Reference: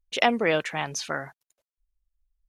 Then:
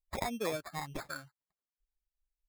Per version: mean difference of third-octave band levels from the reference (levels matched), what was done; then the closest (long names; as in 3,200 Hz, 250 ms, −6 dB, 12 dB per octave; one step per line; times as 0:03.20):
12.5 dB: spectral dynamics exaggerated over time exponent 2
downward compressor 12 to 1, threshold −30 dBFS, peak gain reduction 13 dB
decimation without filtering 15×
sample-and-hold tremolo 3.5 Hz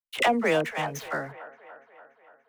7.0 dB: running median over 9 samples
noise gate −58 dBFS, range −33 dB
all-pass dispersion lows, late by 50 ms, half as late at 630 Hz
on a send: delay with a band-pass on its return 289 ms, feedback 62%, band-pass 950 Hz, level −14 dB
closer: second